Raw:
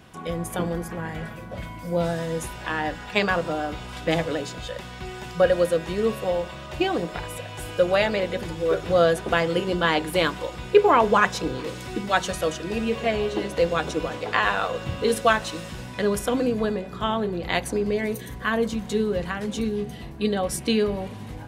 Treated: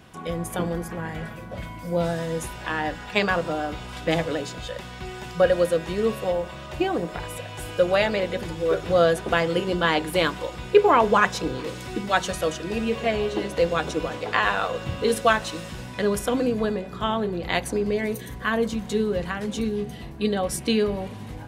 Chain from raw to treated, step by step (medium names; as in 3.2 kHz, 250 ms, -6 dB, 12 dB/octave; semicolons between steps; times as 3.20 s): 6.31–7.20 s: dynamic bell 3.9 kHz, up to -6 dB, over -42 dBFS, Q 0.72